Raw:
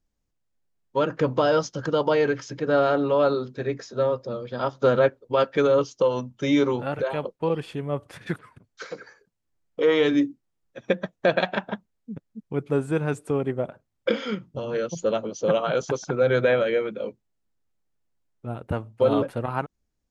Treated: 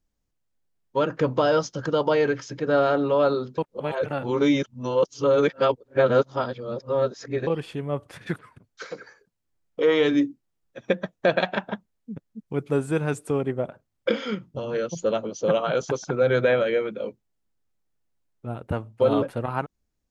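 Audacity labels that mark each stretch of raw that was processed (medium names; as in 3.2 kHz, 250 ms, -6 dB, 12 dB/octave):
3.580000	7.470000	reverse
12.480000	13.420000	treble shelf 3.8 kHz +5.5 dB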